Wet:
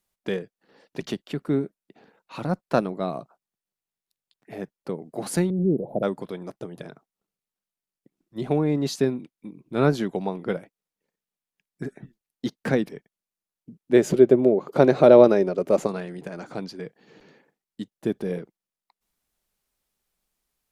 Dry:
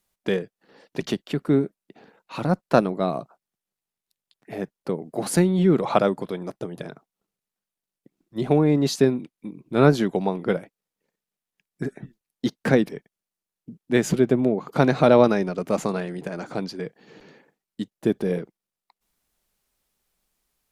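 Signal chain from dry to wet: 5.5–6.03 inverse Chebyshev band-stop 1100–7600 Hz, stop band 40 dB; 13.93–15.87 small resonant body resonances 390/550 Hz, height 10 dB, ringing for 25 ms; gain -4 dB

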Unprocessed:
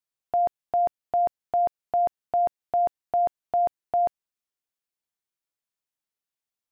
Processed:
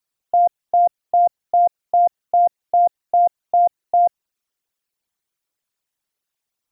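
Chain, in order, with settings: formant sharpening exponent 2; gain +8 dB

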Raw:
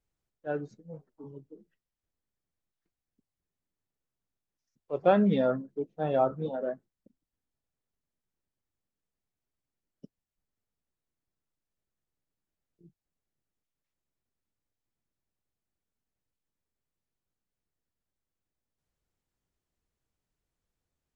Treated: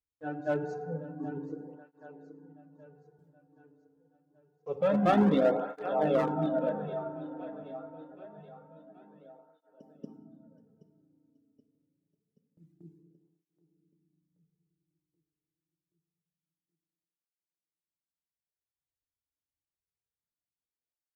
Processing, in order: on a send: reverse echo 0.234 s -7.5 dB; on the sum: reverb removal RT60 2 s; in parallel at -1.5 dB: compressor 10:1, threshold -38 dBFS, peak gain reduction 21 dB; on the sum: gate with hold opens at -57 dBFS; feedback echo 0.777 s, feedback 51%, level -14 dB; FDN reverb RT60 2.7 s, low-frequency decay 1.35×, high-frequency decay 0.25×, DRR 5.5 dB; one-sided clip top -21.5 dBFS; tape flanging out of phase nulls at 0.26 Hz, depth 5.8 ms; gain +2.5 dB

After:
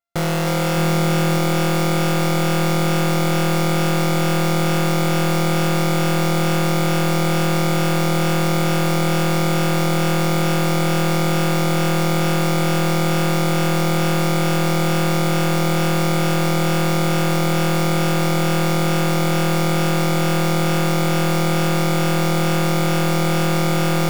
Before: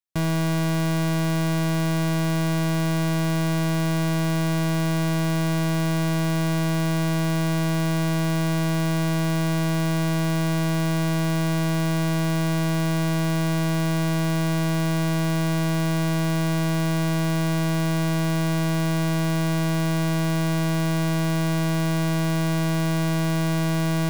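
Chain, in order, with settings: sample sorter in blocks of 64 samples; split-band echo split 360 Hz, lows 0.609 s, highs 0.31 s, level -4 dB; gain +2.5 dB

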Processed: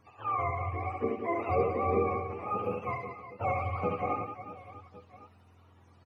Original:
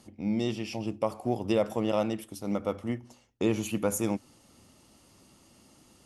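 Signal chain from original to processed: spectrum mirrored in octaves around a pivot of 500 Hz; reverse bouncing-ball echo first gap 70 ms, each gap 1.6×, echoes 5; gain -1.5 dB

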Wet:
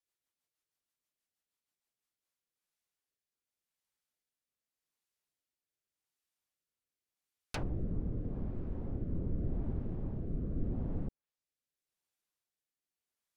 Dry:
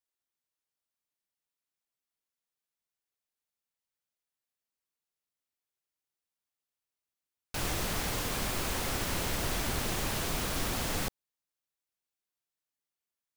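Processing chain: treble ducked by the level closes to 300 Hz, closed at -29.5 dBFS; rotary speaker horn 6.3 Hz, later 0.85 Hz, at 1.78; gain +2 dB

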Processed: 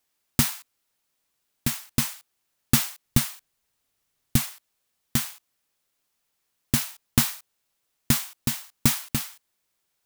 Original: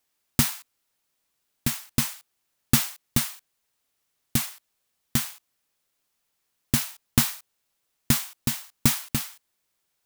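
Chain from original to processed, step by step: 3.05–4.51 low shelf 160 Hz +8 dB

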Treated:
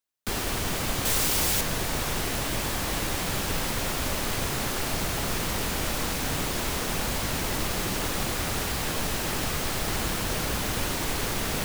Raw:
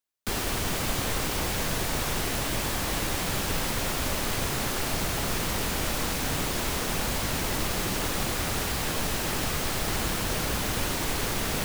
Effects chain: 1.05–1.61 high shelf 3700 Hz +9.5 dB

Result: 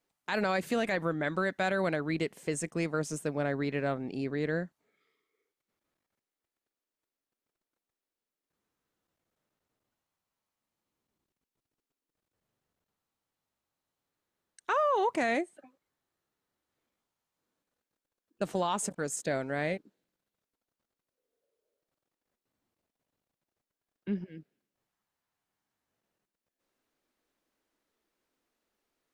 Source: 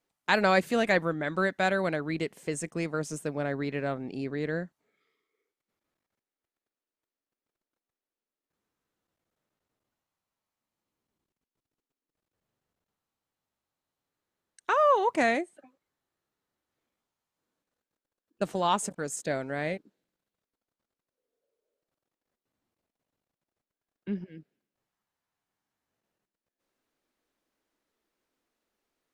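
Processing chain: limiter -20 dBFS, peak gain reduction 10.5 dB

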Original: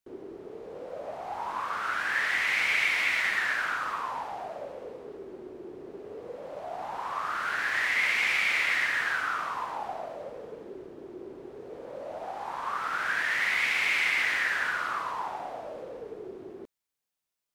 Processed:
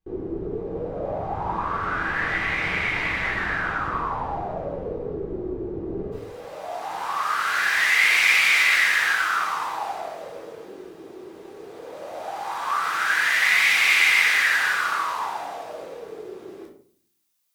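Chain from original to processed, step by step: tilt -4 dB/oct, from 6.11 s +3 dB/oct; shoebox room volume 570 m³, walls furnished, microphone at 3.8 m

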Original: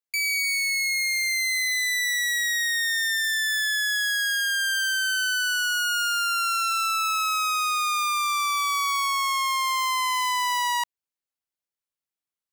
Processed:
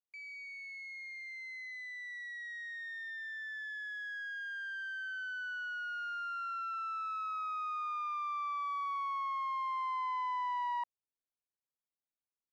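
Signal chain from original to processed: LPF 1000 Hz 12 dB/oct; gain -6 dB

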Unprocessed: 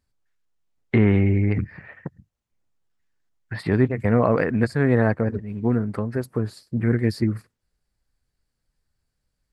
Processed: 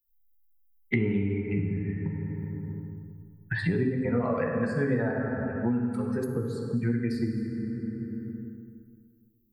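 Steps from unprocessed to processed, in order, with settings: per-bin expansion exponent 2; de-hum 45.45 Hz, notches 34; reverb RT60 1.9 s, pre-delay 3 ms, DRR -1 dB; three-band squash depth 100%; gain -5.5 dB

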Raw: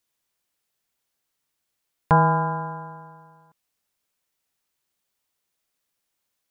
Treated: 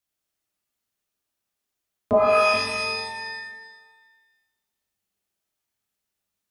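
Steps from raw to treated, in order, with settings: frequency shift -380 Hz; 2.13–2.54 resonant high-pass 730 Hz, resonance Q 4.9; shimmer reverb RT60 1.1 s, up +12 st, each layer -2 dB, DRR 0.5 dB; gain -7.5 dB

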